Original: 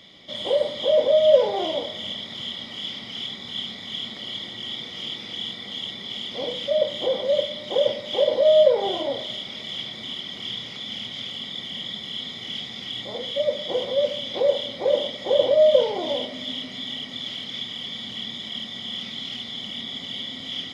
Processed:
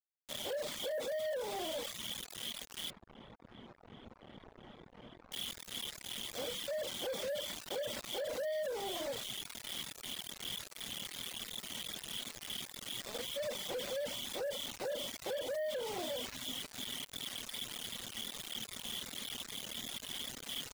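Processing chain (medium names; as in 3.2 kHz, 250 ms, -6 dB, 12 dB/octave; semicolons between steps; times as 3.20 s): bit crusher 5-bit; compression 6:1, threshold -27 dBFS, peak gain reduction 16 dB; saturation -30 dBFS, distortion -14 dB; reverb removal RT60 0.77 s; peak limiter -40.5 dBFS, peak gain reduction 11.5 dB; 2.90–5.32 s: low-pass 1 kHz 12 dB/octave; trim +6.5 dB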